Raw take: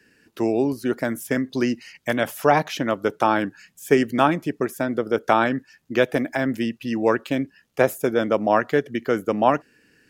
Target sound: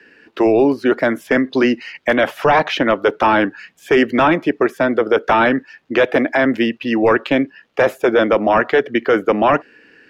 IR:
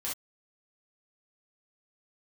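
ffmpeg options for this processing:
-filter_complex "[0:a]acrossover=split=280 3900:gain=0.2 1 0.0708[a][b][c];[a][b][c]amix=inputs=3:normalize=0,apsyclip=19.5dB,volume=-7dB"

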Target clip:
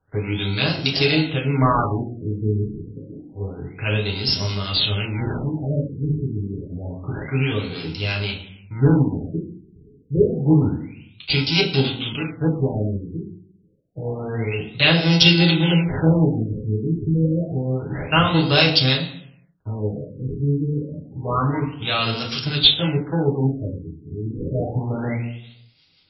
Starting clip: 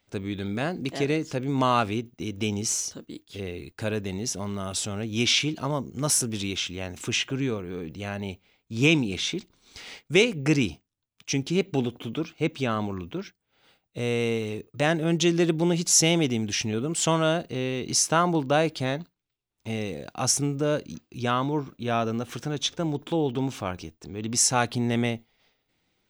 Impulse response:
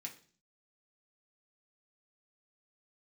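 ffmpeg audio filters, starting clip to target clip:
-filter_complex "[0:a]asplit=2[a][b];[b]acrusher=samples=38:mix=1:aa=0.000001,volume=-8.5dB[c];[a][c]amix=inputs=2:normalize=0,aexciter=amount=6:drive=3.5:freq=2.4k,acrossover=split=930[d][e];[d]aeval=exprs='val(0)*(1-0.5/2+0.5/2*cos(2*PI*6.1*n/s))':c=same[f];[e]aeval=exprs='val(0)*(1-0.5/2-0.5/2*cos(2*PI*6.1*n/s))':c=same[g];[f][g]amix=inputs=2:normalize=0[h];[1:a]atrim=start_sample=2205,asetrate=26019,aresample=44100[i];[h][i]afir=irnorm=-1:irlink=0,afftfilt=real='re*lt(b*sr/1024,440*pow(5700/440,0.5+0.5*sin(2*PI*0.28*pts/sr)))':imag='im*lt(b*sr/1024,440*pow(5700/440,0.5+0.5*sin(2*PI*0.28*pts/sr)))':win_size=1024:overlap=0.75,volume=6dB"

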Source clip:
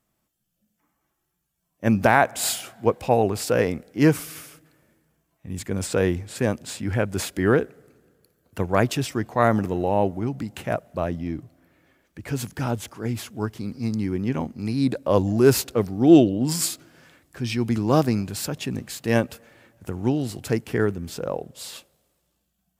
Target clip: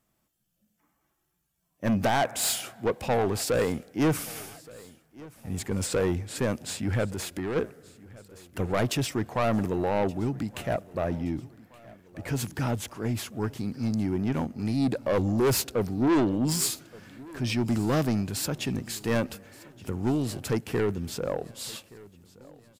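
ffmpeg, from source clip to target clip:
-filter_complex "[0:a]asoftclip=type=tanh:threshold=-19.5dB,aecho=1:1:1173|2346|3519:0.0794|0.0397|0.0199,asplit=3[a][b][c];[a]afade=t=out:st=7.12:d=0.02[d];[b]acompressor=threshold=-32dB:ratio=3,afade=t=in:st=7.12:d=0.02,afade=t=out:st=7.55:d=0.02[e];[c]afade=t=in:st=7.55:d=0.02[f];[d][e][f]amix=inputs=3:normalize=0"

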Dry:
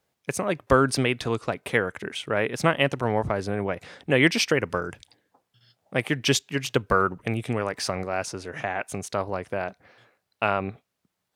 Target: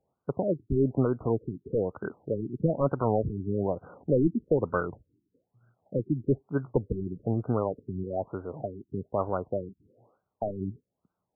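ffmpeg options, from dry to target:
-filter_complex "[0:a]acrossover=split=6100[a][b];[a]aeval=exprs='0.224*(abs(mod(val(0)/0.224+3,4)-2)-1)':c=same[c];[c][b]amix=inputs=2:normalize=0,afftfilt=real='re*lt(b*sr/1024,380*pow(1600/380,0.5+0.5*sin(2*PI*1.1*pts/sr)))':imag='im*lt(b*sr/1024,380*pow(1600/380,0.5+0.5*sin(2*PI*1.1*pts/sr)))':win_size=1024:overlap=0.75"

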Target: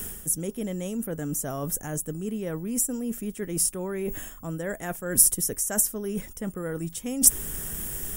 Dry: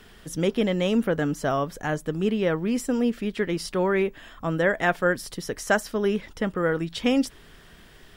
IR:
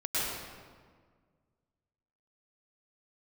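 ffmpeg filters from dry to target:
-af "lowshelf=f=460:g=10,areverse,acompressor=threshold=-35dB:ratio=6,areverse,aexciter=amount=11.7:drive=8.5:freq=6.6k,volume=4.5dB"

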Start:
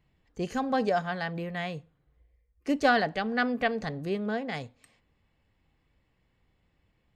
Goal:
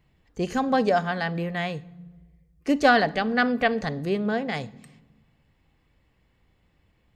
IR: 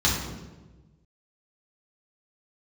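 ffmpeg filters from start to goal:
-filter_complex "[0:a]asplit=2[a][b];[1:a]atrim=start_sample=2205,adelay=44[c];[b][c]afir=irnorm=-1:irlink=0,volume=-35.5dB[d];[a][d]amix=inputs=2:normalize=0,volume=5dB"

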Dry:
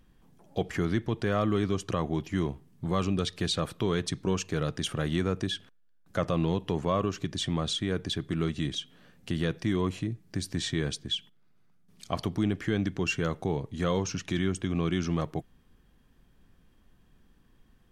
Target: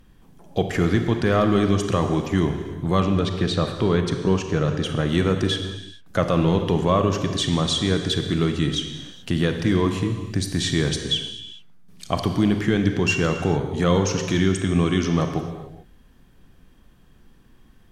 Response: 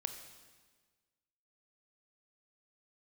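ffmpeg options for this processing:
-filter_complex "[0:a]asettb=1/sr,asplit=3[a][b][c];[a]atrim=end=3.004[d];[b]atrim=start=3:end=5.09,asetpts=PTS-STARTPTS,afade=t=in:d=0.004:c=qsin,afade=t=out:st=2.086:d=0.004:c=qsin,lowpass=f=2.1k:p=1[e];[c]atrim=start=5.086[f];[d][e]acrossfade=d=0.004:c1=hsin:c2=qsin[g];[g][f]acrossfade=d=0.004:c1=qsin:c2=hsin[h];[1:a]atrim=start_sample=2205,afade=t=out:st=0.37:d=0.01,atrim=end_sample=16758,asetrate=31752,aresample=44100[i];[h][i]afir=irnorm=-1:irlink=0,volume=7.5dB"

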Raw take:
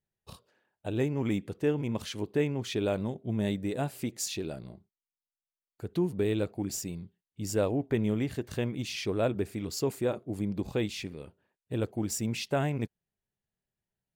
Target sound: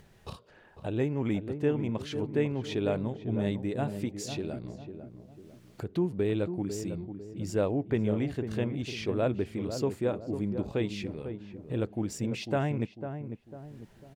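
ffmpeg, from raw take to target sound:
-filter_complex "[0:a]acompressor=mode=upward:threshold=-32dB:ratio=2.5,aemphasis=mode=reproduction:type=50kf,asplit=2[a][b];[b]adelay=499,lowpass=f=940:p=1,volume=-8dB,asplit=2[c][d];[d]adelay=499,lowpass=f=940:p=1,volume=0.44,asplit=2[e][f];[f]adelay=499,lowpass=f=940:p=1,volume=0.44,asplit=2[g][h];[h]adelay=499,lowpass=f=940:p=1,volume=0.44,asplit=2[i][j];[j]adelay=499,lowpass=f=940:p=1,volume=0.44[k];[a][c][e][g][i][k]amix=inputs=6:normalize=0"

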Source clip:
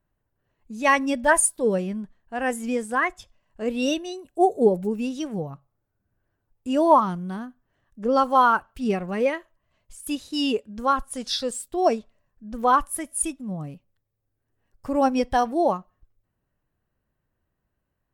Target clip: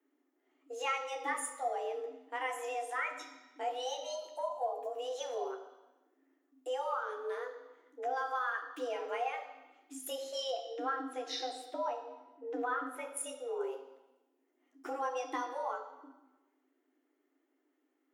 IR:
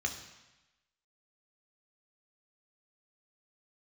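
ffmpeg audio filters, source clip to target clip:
-filter_complex "[0:a]asettb=1/sr,asplit=3[a][b][c];[a]atrim=end=10.504[d];[b]atrim=start=10.5:end=13.17,asetpts=PTS-STARTPTS,afade=t=in:d=0.004:c=qsin,afade=t=out:st=2.666:d=0.004:c=qsin,bass=f=250:g=4,treble=f=4k:g=-14[e];[c]atrim=start=13.166[f];[d][e]acrossfade=d=0.004:c1=hsin:c2=qsin[g];[g][f]acrossfade=d=0.004:c1=qsin:c2=hsin,acompressor=threshold=-31dB:ratio=6,afreqshift=250[h];[1:a]atrim=start_sample=2205[i];[h][i]afir=irnorm=-1:irlink=0,volume=-5dB"

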